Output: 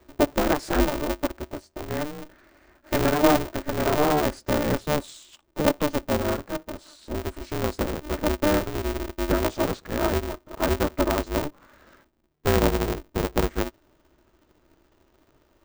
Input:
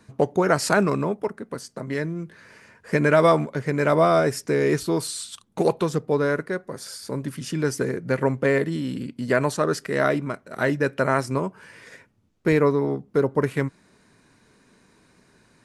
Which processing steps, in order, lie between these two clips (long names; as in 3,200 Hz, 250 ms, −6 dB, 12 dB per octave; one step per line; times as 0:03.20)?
pitch glide at a constant tempo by −6 semitones starting unshifted
high-shelf EQ 4,700 Hz −8.5 dB
hollow resonant body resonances 210/450 Hz, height 11 dB, ringing for 35 ms
ring modulator with a square carrier 150 Hz
level −7 dB